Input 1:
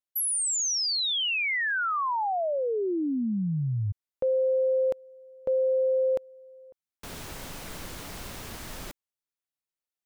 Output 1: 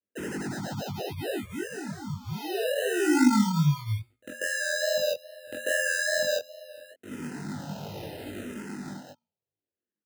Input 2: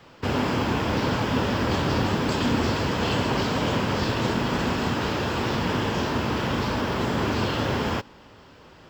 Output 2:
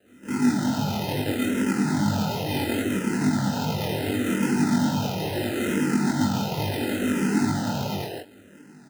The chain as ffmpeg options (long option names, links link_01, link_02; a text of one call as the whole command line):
ffmpeg -i in.wav -filter_complex "[0:a]bandreject=frequency=60:width_type=h:width=6,bandreject=frequency=120:width_type=h:width=6,bandreject=frequency=180:width_type=h:width=6,bandreject=frequency=240:width_type=h:width=6,asplit=2[link_01][link_02];[link_02]acompressor=threshold=-33dB:ratio=6:release=175,volume=-1.5dB[link_03];[link_01][link_03]amix=inputs=2:normalize=0,equalizer=frequency=250:width=0.94:gain=12,acrossover=split=350|1300[link_04][link_05][link_06];[link_04]adelay=50[link_07];[link_05]adelay=190[link_08];[link_07][link_08][link_06]amix=inputs=3:normalize=0,acrusher=samples=39:mix=1:aa=0.000001,equalizer=frequency=940:width=1.5:gain=-2,asplit=2[link_09][link_10];[link_10]adelay=20,volume=-3dB[link_11];[link_09][link_11]amix=inputs=2:normalize=0,flanger=delay=19:depth=6.6:speed=2.4,highpass=frequency=93:width=0.5412,highpass=frequency=93:width=1.3066,dynaudnorm=framelen=270:gausssize=13:maxgain=4dB,asplit=2[link_12][link_13];[link_13]afreqshift=-0.72[link_14];[link_12][link_14]amix=inputs=2:normalize=1,volume=-4dB" out.wav